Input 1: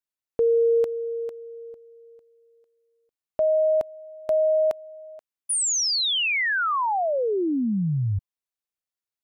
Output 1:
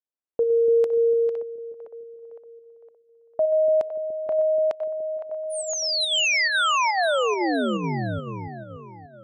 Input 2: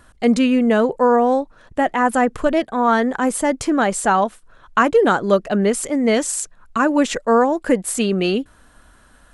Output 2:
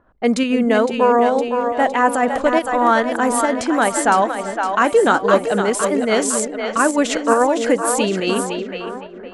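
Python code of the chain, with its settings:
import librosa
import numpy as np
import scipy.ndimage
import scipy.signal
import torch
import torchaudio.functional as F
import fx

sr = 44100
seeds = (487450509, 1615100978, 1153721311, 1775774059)

p1 = fx.low_shelf(x, sr, hz=190.0, db=-11.5)
p2 = fx.echo_split(p1, sr, split_hz=490.0, low_ms=291, high_ms=511, feedback_pct=52, wet_db=-6)
p3 = fx.volume_shaper(p2, sr, bpm=139, per_beat=1, depth_db=-13, release_ms=66.0, shape='slow start')
p4 = p2 + F.gain(torch.from_numpy(p3), 0.0).numpy()
p5 = fx.env_lowpass(p4, sr, base_hz=890.0, full_db=-10.0)
y = F.gain(torch.from_numpy(p5), -4.0).numpy()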